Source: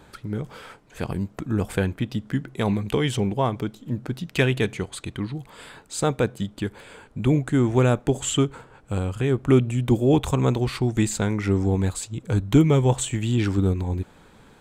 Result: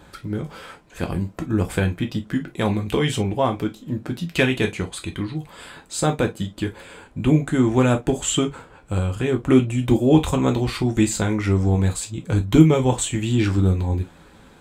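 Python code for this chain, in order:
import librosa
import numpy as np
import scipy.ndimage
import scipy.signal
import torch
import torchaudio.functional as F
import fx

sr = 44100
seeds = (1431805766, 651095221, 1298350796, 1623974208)

y = fx.rev_gated(x, sr, seeds[0], gate_ms=80, shape='falling', drr_db=4.0)
y = F.gain(torch.from_numpy(y), 1.5).numpy()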